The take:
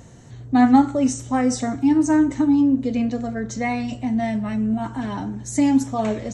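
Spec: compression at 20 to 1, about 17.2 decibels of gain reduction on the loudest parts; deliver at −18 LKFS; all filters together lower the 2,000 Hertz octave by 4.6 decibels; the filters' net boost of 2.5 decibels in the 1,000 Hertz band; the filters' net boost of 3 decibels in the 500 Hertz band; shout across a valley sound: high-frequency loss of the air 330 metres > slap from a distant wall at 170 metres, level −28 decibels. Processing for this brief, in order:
parametric band 500 Hz +4 dB
parametric band 1,000 Hz +4 dB
parametric band 2,000 Hz −3.5 dB
downward compressor 20 to 1, threshold −24 dBFS
high-frequency loss of the air 330 metres
slap from a distant wall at 170 metres, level −28 dB
level +11.5 dB

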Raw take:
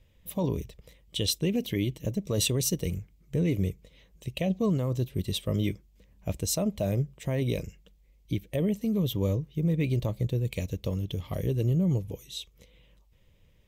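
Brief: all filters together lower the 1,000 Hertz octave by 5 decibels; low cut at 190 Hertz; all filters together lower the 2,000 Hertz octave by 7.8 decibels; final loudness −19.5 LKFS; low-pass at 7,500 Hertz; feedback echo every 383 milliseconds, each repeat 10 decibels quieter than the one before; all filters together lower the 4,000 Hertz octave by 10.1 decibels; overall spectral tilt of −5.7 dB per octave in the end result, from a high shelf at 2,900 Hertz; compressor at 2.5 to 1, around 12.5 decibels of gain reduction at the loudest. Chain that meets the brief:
high-pass filter 190 Hz
low-pass filter 7,500 Hz
parametric band 1,000 Hz −5.5 dB
parametric band 2,000 Hz −4 dB
high-shelf EQ 2,900 Hz −4 dB
parametric band 4,000 Hz −7.5 dB
downward compressor 2.5 to 1, threshold −45 dBFS
repeating echo 383 ms, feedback 32%, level −10 dB
level +25.5 dB

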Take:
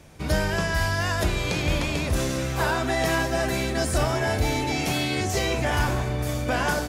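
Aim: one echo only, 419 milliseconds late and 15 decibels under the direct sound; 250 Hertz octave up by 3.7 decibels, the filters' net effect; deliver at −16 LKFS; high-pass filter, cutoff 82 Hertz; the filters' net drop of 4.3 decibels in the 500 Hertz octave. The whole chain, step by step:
high-pass filter 82 Hz
parametric band 250 Hz +7.5 dB
parametric band 500 Hz −8.5 dB
single-tap delay 419 ms −15 dB
level +9 dB

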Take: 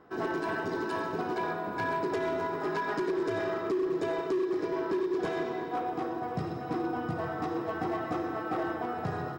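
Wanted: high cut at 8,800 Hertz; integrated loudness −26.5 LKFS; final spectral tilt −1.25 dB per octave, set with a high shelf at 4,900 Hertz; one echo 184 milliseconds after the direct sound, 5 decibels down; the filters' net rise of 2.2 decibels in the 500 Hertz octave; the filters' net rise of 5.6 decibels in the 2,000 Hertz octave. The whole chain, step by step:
low-pass filter 8,800 Hz
parametric band 500 Hz +3 dB
parametric band 2,000 Hz +8.5 dB
high-shelf EQ 4,900 Hz −7.5 dB
single-tap delay 184 ms −5 dB
level +2 dB

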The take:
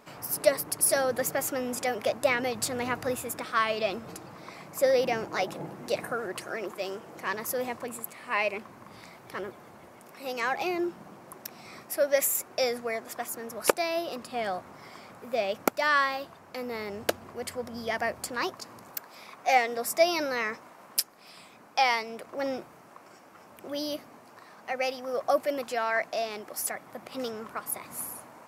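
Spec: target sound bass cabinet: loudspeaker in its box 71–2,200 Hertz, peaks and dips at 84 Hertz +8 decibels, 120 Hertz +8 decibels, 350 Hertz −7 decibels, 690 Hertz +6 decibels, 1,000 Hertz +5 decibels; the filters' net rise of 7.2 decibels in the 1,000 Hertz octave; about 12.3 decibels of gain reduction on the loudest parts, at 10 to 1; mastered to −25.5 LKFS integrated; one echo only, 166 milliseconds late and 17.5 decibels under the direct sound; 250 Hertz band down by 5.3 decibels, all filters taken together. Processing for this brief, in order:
parametric band 250 Hz −4.5 dB
parametric band 1,000 Hz +4.5 dB
downward compressor 10 to 1, threshold −29 dBFS
loudspeaker in its box 71–2,200 Hz, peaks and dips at 84 Hz +8 dB, 120 Hz +8 dB, 350 Hz −7 dB, 690 Hz +6 dB, 1,000 Hz +5 dB
single-tap delay 166 ms −17.5 dB
level +8.5 dB

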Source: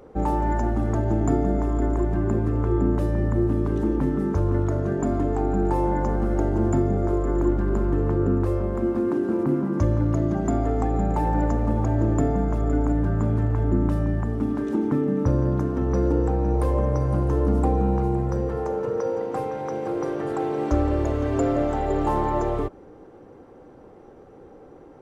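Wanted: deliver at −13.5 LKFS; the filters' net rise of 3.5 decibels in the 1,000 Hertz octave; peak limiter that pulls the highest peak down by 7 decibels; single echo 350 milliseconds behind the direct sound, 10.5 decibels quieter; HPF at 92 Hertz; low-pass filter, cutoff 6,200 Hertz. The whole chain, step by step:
high-pass filter 92 Hz
low-pass filter 6,200 Hz
parametric band 1,000 Hz +4.5 dB
brickwall limiter −16.5 dBFS
single-tap delay 350 ms −10.5 dB
level +12 dB

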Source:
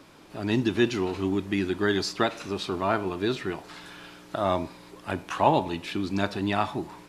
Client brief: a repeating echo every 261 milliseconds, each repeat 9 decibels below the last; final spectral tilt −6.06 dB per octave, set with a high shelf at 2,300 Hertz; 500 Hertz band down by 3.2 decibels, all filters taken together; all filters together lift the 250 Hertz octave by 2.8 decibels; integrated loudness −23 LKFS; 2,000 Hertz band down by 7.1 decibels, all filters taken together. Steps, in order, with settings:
parametric band 250 Hz +6.5 dB
parametric band 500 Hz −7.5 dB
parametric band 2,000 Hz −7 dB
high-shelf EQ 2,300 Hz −4.5 dB
repeating echo 261 ms, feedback 35%, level −9 dB
level +4.5 dB

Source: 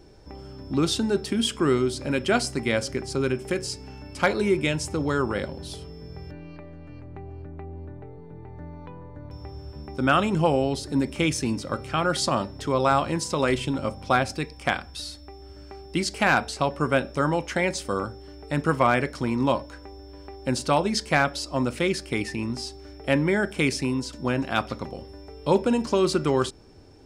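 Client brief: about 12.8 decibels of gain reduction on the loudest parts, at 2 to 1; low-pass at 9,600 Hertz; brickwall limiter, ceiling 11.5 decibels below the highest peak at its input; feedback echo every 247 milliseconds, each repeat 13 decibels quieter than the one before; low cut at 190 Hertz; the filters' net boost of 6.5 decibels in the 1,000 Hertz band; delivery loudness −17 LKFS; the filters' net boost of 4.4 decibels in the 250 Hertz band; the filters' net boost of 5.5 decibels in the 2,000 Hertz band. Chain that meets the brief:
high-pass filter 190 Hz
low-pass filter 9,600 Hz
parametric band 250 Hz +6.5 dB
parametric band 1,000 Hz +7 dB
parametric band 2,000 Hz +4.5 dB
downward compressor 2 to 1, threshold −34 dBFS
brickwall limiter −23 dBFS
repeating echo 247 ms, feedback 22%, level −13 dB
level +18 dB

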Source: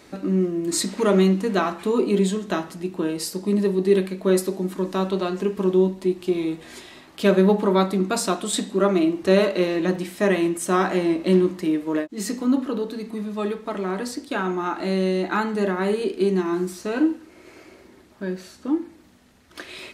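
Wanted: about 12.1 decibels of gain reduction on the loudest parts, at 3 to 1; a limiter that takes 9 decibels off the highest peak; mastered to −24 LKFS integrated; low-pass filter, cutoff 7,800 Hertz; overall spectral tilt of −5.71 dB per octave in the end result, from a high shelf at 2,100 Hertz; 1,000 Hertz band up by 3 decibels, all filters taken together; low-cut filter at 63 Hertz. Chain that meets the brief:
high-pass filter 63 Hz
low-pass filter 7,800 Hz
parametric band 1,000 Hz +5.5 dB
high-shelf EQ 2,100 Hz −6.5 dB
downward compressor 3 to 1, threshold −29 dBFS
level +9 dB
brickwall limiter −14.5 dBFS

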